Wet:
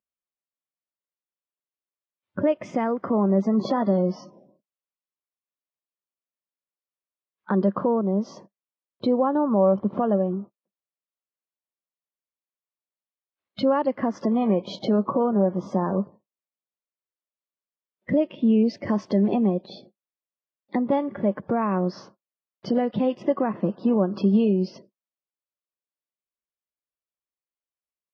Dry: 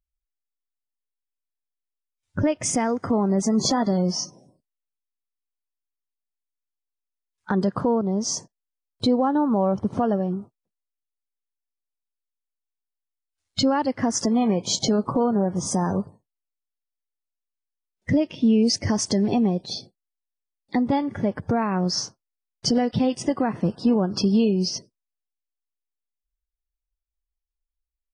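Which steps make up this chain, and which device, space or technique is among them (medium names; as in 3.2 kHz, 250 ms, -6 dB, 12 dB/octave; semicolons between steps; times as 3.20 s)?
kitchen radio (cabinet simulation 180–3400 Hz, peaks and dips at 200 Hz +8 dB, 360 Hz +6 dB, 570 Hz +9 dB, 1.1 kHz +7 dB); trim -4.5 dB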